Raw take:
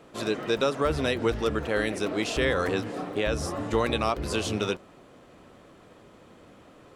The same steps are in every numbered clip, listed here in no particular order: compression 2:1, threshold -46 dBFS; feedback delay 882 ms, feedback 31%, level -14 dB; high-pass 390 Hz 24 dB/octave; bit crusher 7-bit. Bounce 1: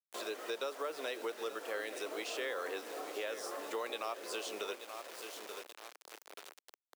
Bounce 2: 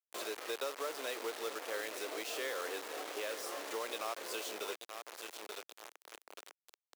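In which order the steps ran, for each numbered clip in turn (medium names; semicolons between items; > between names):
feedback delay > bit crusher > high-pass > compression; feedback delay > compression > bit crusher > high-pass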